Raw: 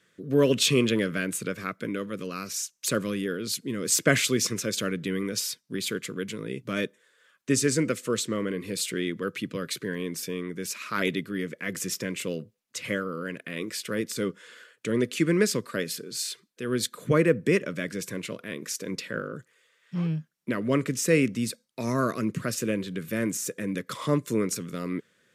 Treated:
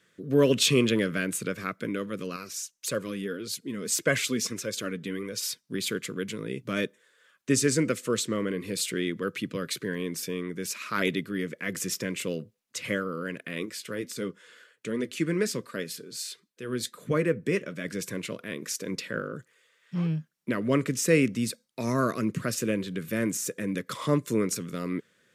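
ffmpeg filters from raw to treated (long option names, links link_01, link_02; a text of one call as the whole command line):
ffmpeg -i in.wav -filter_complex "[0:a]asettb=1/sr,asplit=3[link_01][link_02][link_03];[link_01]atrim=end=2.364[link_04];[link_02]atrim=start=2.36:end=5.43,asetpts=PTS-STARTPTS,afade=type=in:duration=0.004:curve=qsin,afade=type=out:start_time=3.066:duration=0.004:curve=qsin,flanger=delay=1.8:depth=2.9:regen=43:speed=1.7:shape=sinusoidal[link_05];[link_03]atrim=start=5.426[link_06];[link_04][link_05]acrossfade=duration=0.004:curve1=hsin:curve2=qsin[link_07];[link_07][link_06]acrossfade=duration=0.004:curve1=qsin:curve2=hsin,asplit=3[link_08][link_09][link_10];[link_08]afade=type=out:start_time=13.65:duration=0.02[link_11];[link_09]flanger=delay=3.8:depth=3.8:regen=-71:speed=1.4:shape=triangular,afade=type=in:start_time=13.65:duration=0.02,afade=type=out:start_time=17.84:duration=0.02[link_12];[link_10]afade=type=in:start_time=17.84:duration=0.02[link_13];[link_11][link_12][link_13]amix=inputs=3:normalize=0" out.wav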